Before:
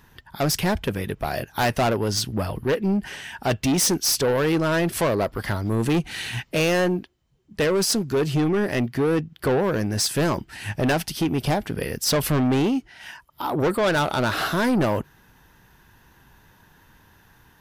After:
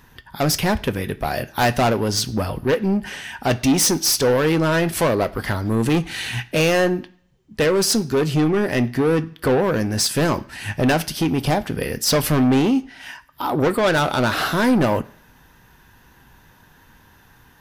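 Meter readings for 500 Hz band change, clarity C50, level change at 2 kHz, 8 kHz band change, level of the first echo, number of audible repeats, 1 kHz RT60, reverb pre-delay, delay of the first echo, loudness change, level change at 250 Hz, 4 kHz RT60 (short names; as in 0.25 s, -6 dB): +3.0 dB, 19.5 dB, +3.5 dB, +3.0 dB, none, none, 0.60 s, 3 ms, none, +3.5 dB, +3.5 dB, 0.60 s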